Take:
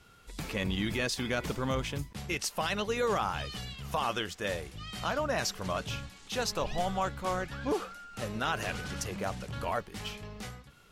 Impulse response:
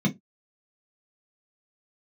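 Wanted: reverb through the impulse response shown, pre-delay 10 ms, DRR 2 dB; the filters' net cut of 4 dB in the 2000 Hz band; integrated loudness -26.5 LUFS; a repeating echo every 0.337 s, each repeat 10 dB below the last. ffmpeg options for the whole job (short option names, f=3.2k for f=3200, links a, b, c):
-filter_complex "[0:a]equalizer=f=2k:t=o:g=-5.5,aecho=1:1:337|674|1011|1348:0.316|0.101|0.0324|0.0104,asplit=2[a][b];[1:a]atrim=start_sample=2205,adelay=10[c];[b][c]afir=irnorm=-1:irlink=0,volume=-10.5dB[d];[a][d]amix=inputs=2:normalize=0,volume=-4dB"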